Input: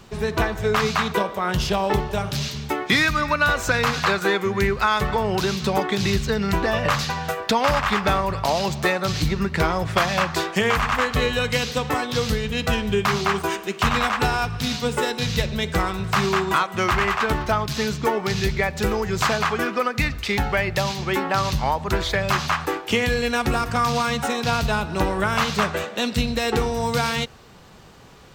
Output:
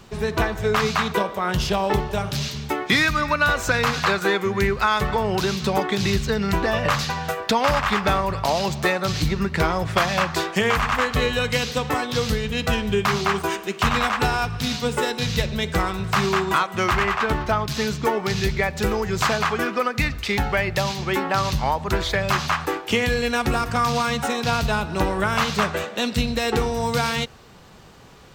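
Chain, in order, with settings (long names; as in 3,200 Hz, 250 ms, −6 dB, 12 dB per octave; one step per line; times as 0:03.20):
0:17.03–0:17.68: high-shelf EQ 5,500 Hz −5.5 dB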